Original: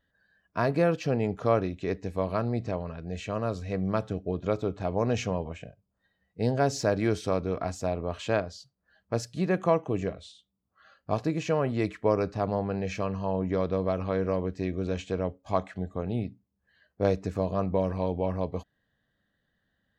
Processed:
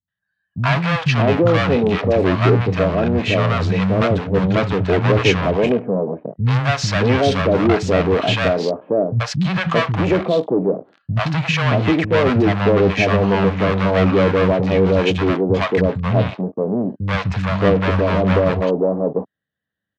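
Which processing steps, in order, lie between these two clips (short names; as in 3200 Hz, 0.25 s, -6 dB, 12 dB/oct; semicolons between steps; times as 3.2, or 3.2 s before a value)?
sample leveller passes 5; Chebyshev band-pass 110–3200 Hz, order 2; three bands offset in time lows, highs, mids 80/620 ms, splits 190/750 Hz; gain +3.5 dB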